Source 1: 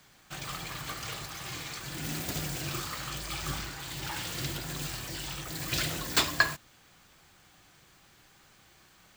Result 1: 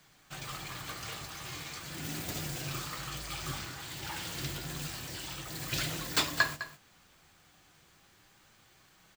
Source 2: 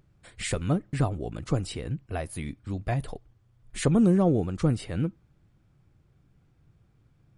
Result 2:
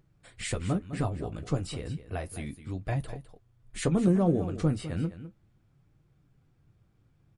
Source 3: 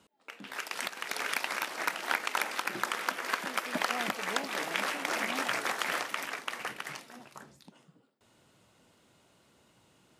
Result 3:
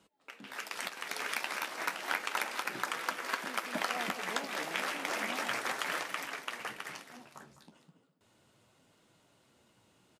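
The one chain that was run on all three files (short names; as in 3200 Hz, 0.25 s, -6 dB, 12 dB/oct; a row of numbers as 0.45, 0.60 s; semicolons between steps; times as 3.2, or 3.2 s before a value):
flange 0.33 Hz, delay 5.9 ms, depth 7.7 ms, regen -48%; echo 0.206 s -13 dB; gain +1 dB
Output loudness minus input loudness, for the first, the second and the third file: -3.0, -3.0, -3.0 LU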